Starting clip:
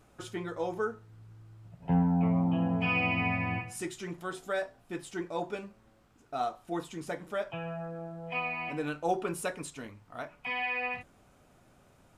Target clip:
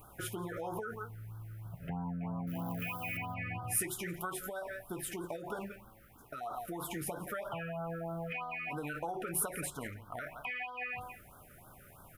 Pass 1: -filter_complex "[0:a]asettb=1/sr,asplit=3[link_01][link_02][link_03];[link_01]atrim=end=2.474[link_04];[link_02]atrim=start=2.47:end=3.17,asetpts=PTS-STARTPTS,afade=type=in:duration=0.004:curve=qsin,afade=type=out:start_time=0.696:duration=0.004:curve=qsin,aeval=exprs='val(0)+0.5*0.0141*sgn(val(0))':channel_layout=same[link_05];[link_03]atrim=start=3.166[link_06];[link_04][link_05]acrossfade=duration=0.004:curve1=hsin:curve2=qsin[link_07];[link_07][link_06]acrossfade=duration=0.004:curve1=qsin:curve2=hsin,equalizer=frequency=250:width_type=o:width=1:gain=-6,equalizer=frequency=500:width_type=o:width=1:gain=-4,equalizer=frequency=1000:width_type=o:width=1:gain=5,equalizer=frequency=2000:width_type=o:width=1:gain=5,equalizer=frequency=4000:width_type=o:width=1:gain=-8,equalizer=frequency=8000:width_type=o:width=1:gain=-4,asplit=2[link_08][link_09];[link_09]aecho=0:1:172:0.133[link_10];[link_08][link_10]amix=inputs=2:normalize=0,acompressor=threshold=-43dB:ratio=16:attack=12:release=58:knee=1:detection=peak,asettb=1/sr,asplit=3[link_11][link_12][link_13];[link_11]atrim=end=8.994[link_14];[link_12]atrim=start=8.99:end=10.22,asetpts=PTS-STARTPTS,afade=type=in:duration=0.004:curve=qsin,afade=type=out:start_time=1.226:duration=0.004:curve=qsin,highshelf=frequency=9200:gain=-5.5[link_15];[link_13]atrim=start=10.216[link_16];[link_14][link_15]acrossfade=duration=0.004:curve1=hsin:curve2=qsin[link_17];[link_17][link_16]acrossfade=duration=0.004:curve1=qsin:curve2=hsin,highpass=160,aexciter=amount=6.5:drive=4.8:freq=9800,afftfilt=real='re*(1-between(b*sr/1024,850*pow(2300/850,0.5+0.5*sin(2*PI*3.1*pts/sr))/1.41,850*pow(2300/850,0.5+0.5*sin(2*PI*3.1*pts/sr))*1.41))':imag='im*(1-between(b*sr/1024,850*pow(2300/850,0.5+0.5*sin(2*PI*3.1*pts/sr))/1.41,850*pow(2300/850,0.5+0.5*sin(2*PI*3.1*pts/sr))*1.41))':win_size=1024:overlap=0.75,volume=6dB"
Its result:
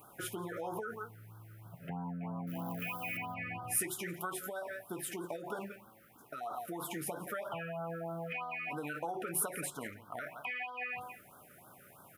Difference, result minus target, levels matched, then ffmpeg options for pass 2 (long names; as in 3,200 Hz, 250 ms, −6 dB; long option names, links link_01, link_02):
125 Hz band −3.5 dB
-filter_complex "[0:a]asettb=1/sr,asplit=3[link_01][link_02][link_03];[link_01]atrim=end=2.474[link_04];[link_02]atrim=start=2.47:end=3.17,asetpts=PTS-STARTPTS,afade=type=in:duration=0.004:curve=qsin,afade=type=out:start_time=0.696:duration=0.004:curve=qsin,aeval=exprs='val(0)+0.5*0.0141*sgn(val(0))':channel_layout=same[link_05];[link_03]atrim=start=3.166[link_06];[link_04][link_05]acrossfade=duration=0.004:curve1=hsin:curve2=qsin[link_07];[link_07][link_06]acrossfade=duration=0.004:curve1=qsin:curve2=hsin,equalizer=frequency=250:width_type=o:width=1:gain=-6,equalizer=frequency=500:width_type=o:width=1:gain=-4,equalizer=frequency=1000:width_type=o:width=1:gain=5,equalizer=frequency=2000:width_type=o:width=1:gain=5,equalizer=frequency=4000:width_type=o:width=1:gain=-8,equalizer=frequency=8000:width_type=o:width=1:gain=-4,asplit=2[link_08][link_09];[link_09]aecho=0:1:172:0.133[link_10];[link_08][link_10]amix=inputs=2:normalize=0,acompressor=threshold=-43dB:ratio=16:attack=12:release=58:knee=1:detection=peak,asettb=1/sr,asplit=3[link_11][link_12][link_13];[link_11]atrim=end=8.994[link_14];[link_12]atrim=start=8.99:end=10.22,asetpts=PTS-STARTPTS,afade=type=in:duration=0.004:curve=qsin,afade=type=out:start_time=1.226:duration=0.004:curve=qsin,highshelf=frequency=9200:gain=-5.5[link_15];[link_13]atrim=start=10.216[link_16];[link_14][link_15]acrossfade=duration=0.004:curve1=hsin:curve2=qsin[link_17];[link_17][link_16]acrossfade=duration=0.004:curve1=qsin:curve2=hsin,aexciter=amount=6.5:drive=4.8:freq=9800,afftfilt=real='re*(1-between(b*sr/1024,850*pow(2300/850,0.5+0.5*sin(2*PI*3.1*pts/sr))/1.41,850*pow(2300/850,0.5+0.5*sin(2*PI*3.1*pts/sr))*1.41))':imag='im*(1-between(b*sr/1024,850*pow(2300/850,0.5+0.5*sin(2*PI*3.1*pts/sr))/1.41,850*pow(2300/850,0.5+0.5*sin(2*PI*3.1*pts/sr))*1.41))':win_size=1024:overlap=0.75,volume=6dB"